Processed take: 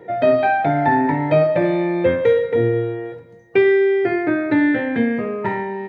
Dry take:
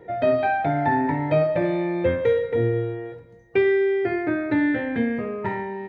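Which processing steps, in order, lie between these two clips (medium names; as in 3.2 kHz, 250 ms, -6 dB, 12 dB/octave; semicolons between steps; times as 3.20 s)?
high-pass 120 Hz 12 dB/octave; trim +5 dB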